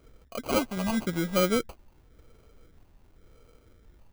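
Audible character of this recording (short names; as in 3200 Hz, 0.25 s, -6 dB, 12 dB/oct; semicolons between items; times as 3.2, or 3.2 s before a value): phasing stages 12, 0.93 Hz, lowest notch 420–2200 Hz; aliases and images of a low sample rate 1800 Hz, jitter 0%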